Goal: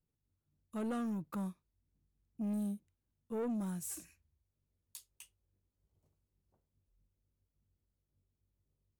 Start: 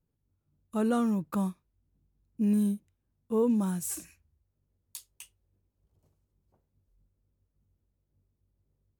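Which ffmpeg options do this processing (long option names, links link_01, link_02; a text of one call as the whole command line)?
ffmpeg -i in.wav -af "asoftclip=type=tanh:threshold=-25.5dB,volume=-7dB" out.wav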